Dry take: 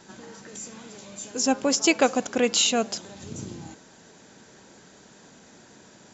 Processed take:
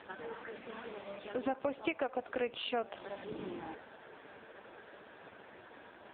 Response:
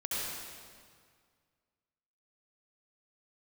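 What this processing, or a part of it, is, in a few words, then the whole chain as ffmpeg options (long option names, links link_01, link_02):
voicemail: -af "highpass=410,lowpass=2800,acompressor=threshold=-36dB:ratio=12,volume=6dB" -ar 8000 -c:a libopencore_amrnb -b:a 4750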